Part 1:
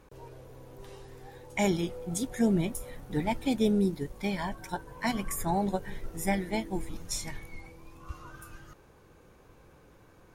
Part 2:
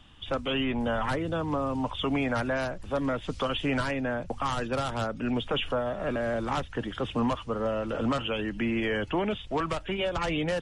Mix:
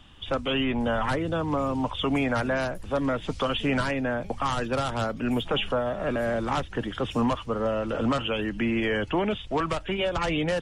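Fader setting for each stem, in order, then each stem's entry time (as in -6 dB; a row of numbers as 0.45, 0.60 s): -19.5, +2.5 dB; 0.00, 0.00 s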